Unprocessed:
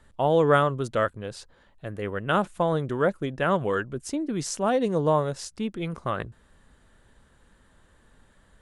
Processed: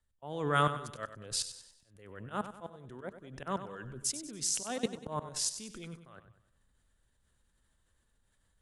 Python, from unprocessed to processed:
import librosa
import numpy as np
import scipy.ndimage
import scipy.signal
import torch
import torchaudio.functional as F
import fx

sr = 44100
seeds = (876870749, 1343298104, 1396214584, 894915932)

p1 = fx.level_steps(x, sr, step_db=23)
p2 = fx.auto_swell(p1, sr, attack_ms=390.0)
p3 = fx.dynamic_eq(p2, sr, hz=550.0, q=1.8, threshold_db=-44.0, ratio=4.0, max_db=-7)
p4 = fx.rider(p3, sr, range_db=4, speed_s=0.5)
p5 = fx.high_shelf(p4, sr, hz=3500.0, db=11.0)
p6 = p5 + fx.echo_feedback(p5, sr, ms=96, feedback_pct=51, wet_db=-11, dry=0)
p7 = fx.band_widen(p6, sr, depth_pct=40)
y = p7 * librosa.db_to_amplitude(-1.5)